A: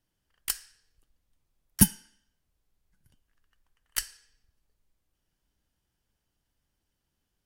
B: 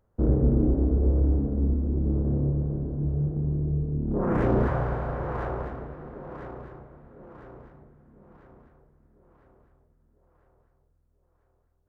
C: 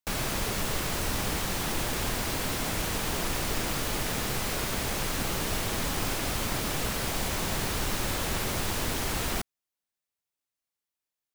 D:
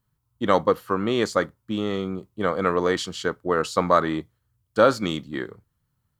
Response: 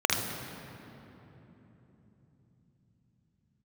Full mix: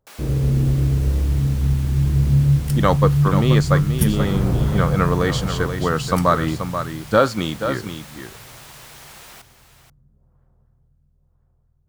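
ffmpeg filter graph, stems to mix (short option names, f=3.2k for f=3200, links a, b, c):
-filter_complex "[0:a]adelay=2200,volume=-6dB[a];[1:a]equalizer=f=140:w=6.3:g=12,volume=-5dB,asplit=2[b][c];[c]volume=-21dB[d];[2:a]highpass=500,volume=-9.5dB,asplit=2[e][f];[f]volume=-10.5dB[g];[3:a]adelay=2350,volume=2.5dB,asplit=2[h][i];[i]volume=-8.5dB[j];[4:a]atrim=start_sample=2205[k];[d][k]afir=irnorm=-1:irlink=0[l];[g][j]amix=inputs=2:normalize=0,aecho=0:1:482:1[m];[a][b][e][h][l][m]amix=inputs=6:normalize=0,asubboost=boost=4.5:cutoff=170"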